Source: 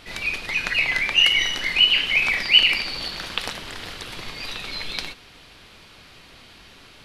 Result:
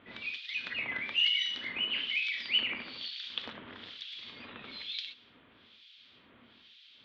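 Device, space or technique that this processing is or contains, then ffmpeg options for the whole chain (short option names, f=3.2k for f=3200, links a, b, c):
guitar amplifier with harmonic tremolo: -filter_complex "[0:a]acrossover=split=2200[a][b];[a]aeval=exprs='val(0)*(1-1/2+1/2*cos(2*PI*1.1*n/s))':c=same[c];[b]aeval=exprs='val(0)*(1-1/2-1/2*cos(2*PI*1.1*n/s))':c=same[d];[c][d]amix=inputs=2:normalize=0,asoftclip=type=tanh:threshold=-13.5dB,highpass=110,equalizer=f=160:t=q:w=4:g=-5,equalizer=f=240:t=q:w=4:g=8,equalizer=f=770:t=q:w=4:g=-5,equalizer=f=3.4k:t=q:w=4:g=10,lowpass=f=4.4k:w=0.5412,lowpass=f=4.4k:w=1.3066,volume=-8.5dB"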